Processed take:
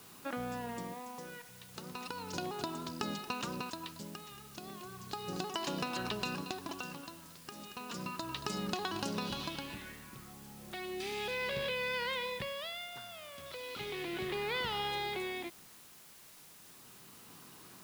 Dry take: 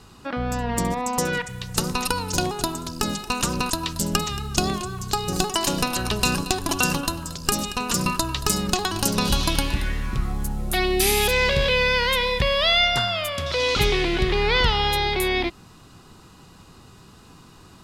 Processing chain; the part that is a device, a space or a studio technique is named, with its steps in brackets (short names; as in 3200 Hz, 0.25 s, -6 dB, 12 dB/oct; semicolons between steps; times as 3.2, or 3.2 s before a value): medium wave at night (BPF 160–4300 Hz; compressor, threshold -25 dBFS, peak gain reduction 9.5 dB; tremolo 0.34 Hz, depth 75%; whine 10000 Hz -61 dBFS; white noise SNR 16 dB); gain -7.5 dB